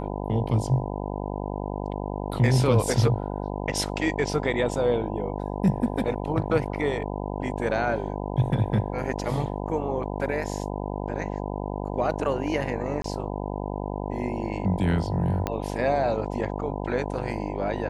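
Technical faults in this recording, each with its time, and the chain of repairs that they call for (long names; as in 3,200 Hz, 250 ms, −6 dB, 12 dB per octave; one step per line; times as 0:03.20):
mains buzz 50 Hz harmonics 20 −31 dBFS
0:13.02–0:13.04: drop-out 23 ms
0:15.47: click −12 dBFS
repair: click removal
hum removal 50 Hz, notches 20
repair the gap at 0:13.02, 23 ms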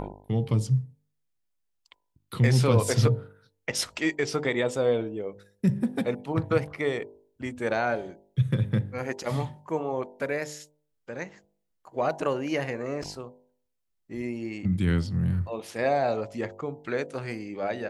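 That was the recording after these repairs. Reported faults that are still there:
0:15.47: click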